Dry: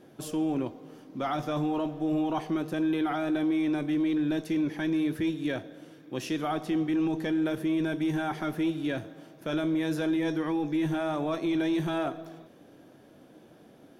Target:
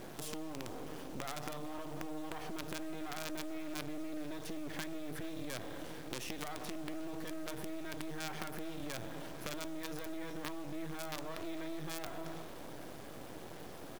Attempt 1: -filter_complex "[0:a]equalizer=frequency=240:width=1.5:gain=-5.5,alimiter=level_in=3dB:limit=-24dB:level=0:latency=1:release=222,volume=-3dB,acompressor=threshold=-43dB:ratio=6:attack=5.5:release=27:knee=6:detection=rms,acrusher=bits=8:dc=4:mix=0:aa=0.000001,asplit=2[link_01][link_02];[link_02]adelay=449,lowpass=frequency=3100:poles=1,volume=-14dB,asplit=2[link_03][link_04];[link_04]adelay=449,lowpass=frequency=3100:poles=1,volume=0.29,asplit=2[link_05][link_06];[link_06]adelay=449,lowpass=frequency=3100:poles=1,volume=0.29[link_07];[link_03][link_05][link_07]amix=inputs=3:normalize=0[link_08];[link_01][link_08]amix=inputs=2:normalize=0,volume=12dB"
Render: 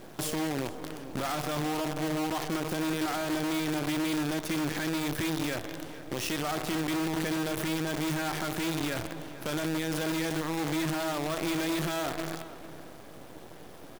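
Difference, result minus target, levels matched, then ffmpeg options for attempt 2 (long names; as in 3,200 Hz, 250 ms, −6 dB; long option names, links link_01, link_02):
downward compressor: peak gain reduction −6.5 dB
-filter_complex "[0:a]equalizer=frequency=240:width=1.5:gain=-5.5,alimiter=level_in=3dB:limit=-24dB:level=0:latency=1:release=222,volume=-3dB,acompressor=threshold=-51dB:ratio=6:attack=5.5:release=27:knee=6:detection=rms,acrusher=bits=8:dc=4:mix=0:aa=0.000001,asplit=2[link_01][link_02];[link_02]adelay=449,lowpass=frequency=3100:poles=1,volume=-14dB,asplit=2[link_03][link_04];[link_04]adelay=449,lowpass=frequency=3100:poles=1,volume=0.29,asplit=2[link_05][link_06];[link_06]adelay=449,lowpass=frequency=3100:poles=1,volume=0.29[link_07];[link_03][link_05][link_07]amix=inputs=3:normalize=0[link_08];[link_01][link_08]amix=inputs=2:normalize=0,volume=12dB"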